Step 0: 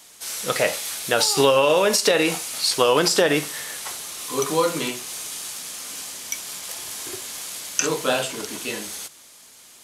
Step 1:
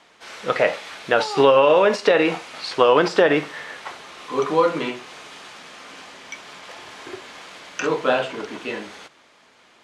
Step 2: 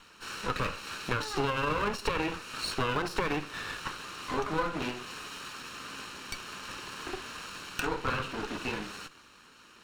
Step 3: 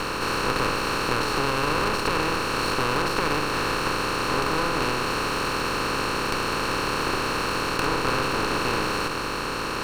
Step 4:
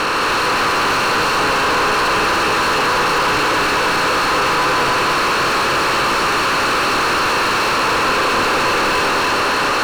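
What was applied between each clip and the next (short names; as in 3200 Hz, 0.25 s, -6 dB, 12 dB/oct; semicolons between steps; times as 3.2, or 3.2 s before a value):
LPF 2200 Hz 12 dB/oct; low shelf 150 Hz -10.5 dB; gain +4 dB
minimum comb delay 0.72 ms; compressor 2.5:1, threshold -32 dBFS, peak gain reduction 12 dB
per-bin compression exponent 0.2; gain -1.5 dB
regenerating reverse delay 0.147 s, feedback 80%, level -3 dB; overdrive pedal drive 28 dB, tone 2900 Hz, clips at -6.5 dBFS; gain -2 dB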